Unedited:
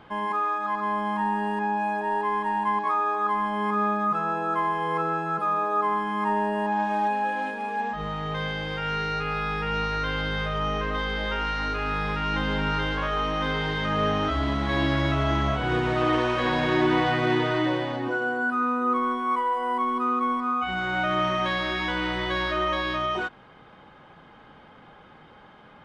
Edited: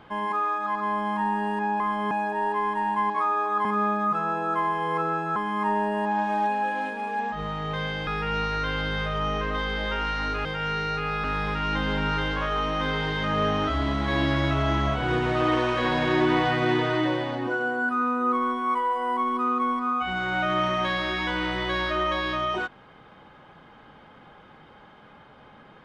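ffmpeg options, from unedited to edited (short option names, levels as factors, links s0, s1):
-filter_complex "[0:a]asplit=8[s0][s1][s2][s3][s4][s5][s6][s7];[s0]atrim=end=1.802[s8];[s1]atrim=start=3.338:end=3.652[s9];[s2]atrim=start=1.798:end=3.342[s10];[s3]atrim=start=3.648:end=5.362[s11];[s4]atrim=start=5.968:end=8.682[s12];[s5]atrim=start=9.468:end=11.852[s13];[s6]atrim=start=8.678:end=9.472[s14];[s7]atrim=start=11.848[s15];[s8][s9]acrossfade=d=0.004:c1=hsin:c2=hsin[s16];[s16][s10]acrossfade=d=0.004:c1=hsin:c2=hsin[s17];[s17][s11]acrossfade=d=0.004:c1=hsin:c2=hsin[s18];[s18][s12]acrossfade=d=0.004:c1=hsin:c2=hsin[s19];[s19][s13]acrossfade=d=0.004:c1=hsin:c2=hsin[s20];[s20][s14]acrossfade=d=0.004:c1=hsin:c2=hsin[s21];[s21][s15]acrossfade=d=0.004:c1=hsin:c2=hsin"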